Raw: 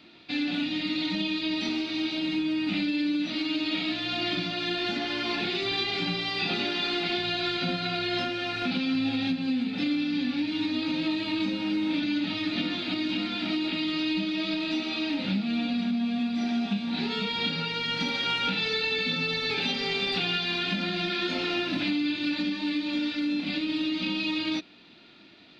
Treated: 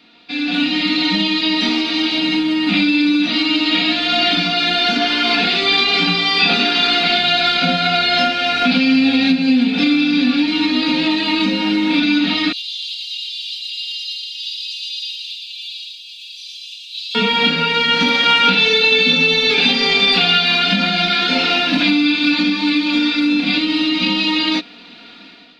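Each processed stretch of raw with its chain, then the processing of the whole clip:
12.52–17.15 s: elliptic high-pass 2.9 kHz, stop band 50 dB + differentiator + delay 117 ms -3.5 dB
whole clip: bass shelf 300 Hz -6 dB; comb 4.2 ms, depth 71%; level rider gain up to 10 dB; trim +3 dB

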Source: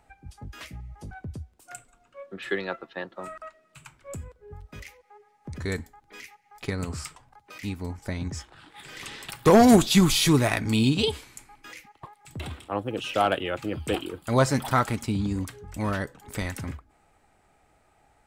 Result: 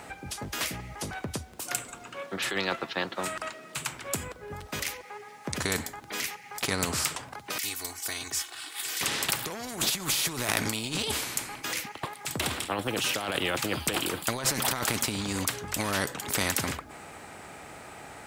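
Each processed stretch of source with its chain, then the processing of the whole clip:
7.58–9.01 s: pre-emphasis filter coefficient 0.97 + comb 2.7 ms, depth 89%
whole clip: high-pass 120 Hz 12 dB/octave; compressor with a negative ratio -30 dBFS, ratio -1; spectrum-flattening compressor 2:1; trim +3 dB

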